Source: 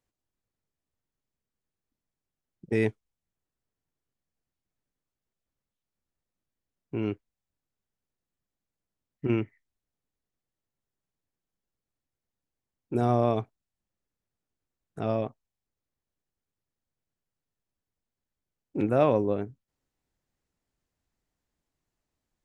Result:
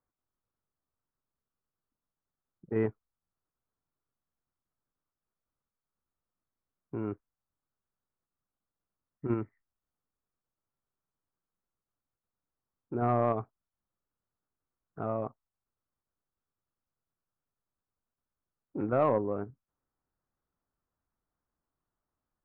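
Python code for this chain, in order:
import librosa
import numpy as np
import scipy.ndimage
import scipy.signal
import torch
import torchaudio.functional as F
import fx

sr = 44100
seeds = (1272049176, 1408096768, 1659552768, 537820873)

p1 = fx.ladder_lowpass(x, sr, hz=1500.0, resonance_pct=50)
p2 = fx.level_steps(p1, sr, step_db=11)
p3 = p1 + F.gain(torch.from_numpy(p2), 2.0).numpy()
y = 10.0 ** (-15.0 / 20.0) * np.tanh(p3 / 10.0 ** (-15.0 / 20.0))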